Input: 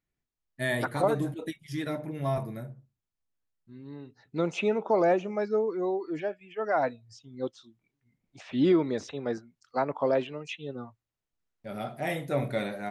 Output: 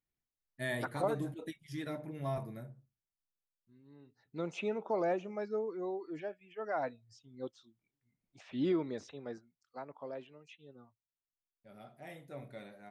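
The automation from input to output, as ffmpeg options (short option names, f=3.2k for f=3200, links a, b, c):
-af "volume=0.5dB,afade=t=out:st=2.62:d=1.21:silence=0.334965,afade=t=in:st=3.83:d=0.71:silence=0.398107,afade=t=out:st=8.82:d=1.03:silence=0.354813"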